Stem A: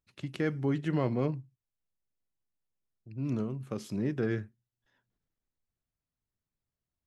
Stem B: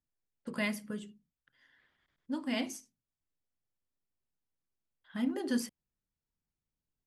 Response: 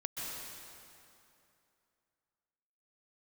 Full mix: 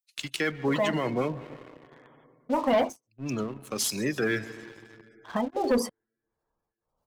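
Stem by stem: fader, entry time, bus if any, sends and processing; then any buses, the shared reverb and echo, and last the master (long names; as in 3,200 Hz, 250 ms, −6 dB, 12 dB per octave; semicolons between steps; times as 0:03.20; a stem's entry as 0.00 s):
0.0 dB, 0.00 s, send −14 dB, spectral tilt +4 dB per octave; brickwall limiter −26.5 dBFS, peak gain reduction 8.5 dB; multiband upward and downward expander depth 100%
+1.5 dB, 0.20 s, no send, flat-topped bell 740 Hz +15 dB; tremolo along a rectified sine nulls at 1.6 Hz; automatic ducking −9 dB, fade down 0.25 s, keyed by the first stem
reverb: on, RT60 2.7 s, pre-delay 117 ms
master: gate on every frequency bin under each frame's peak −25 dB strong; leveller curve on the samples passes 2; multiband upward and downward compressor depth 40%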